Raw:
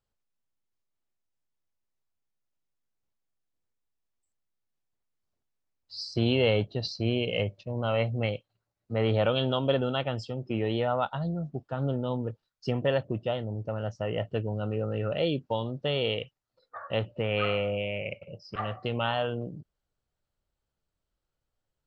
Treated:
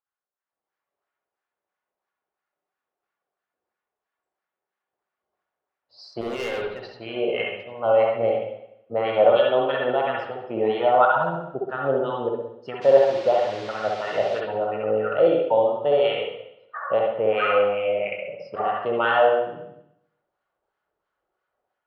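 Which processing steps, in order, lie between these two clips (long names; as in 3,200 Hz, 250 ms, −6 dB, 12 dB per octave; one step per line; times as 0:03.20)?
automatic gain control gain up to 14 dB
auto-filter band-pass sine 3 Hz 540–1,600 Hz
0:06.21–0:06.84: gain into a clipping stage and back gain 29 dB
0:12.81–0:14.39: noise in a band 340–4,900 Hz −45 dBFS
convolution reverb RT60 0.80 s, pre-delay 59 ms, DRR −1.5 dB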